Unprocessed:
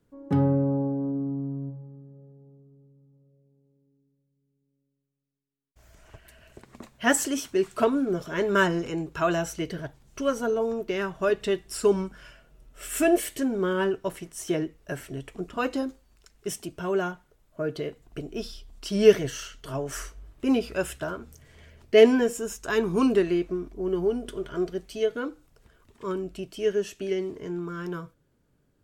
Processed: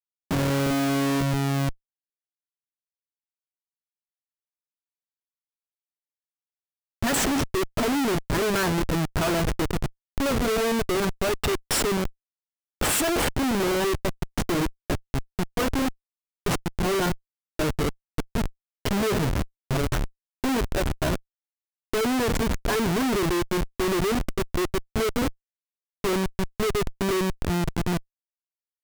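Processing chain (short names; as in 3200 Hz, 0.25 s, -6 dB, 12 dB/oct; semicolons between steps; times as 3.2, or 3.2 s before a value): 11.25–13.17 tilt +2.5 dB/oct; Schmitt trigger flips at -29.5 dBFS; gain +5 dB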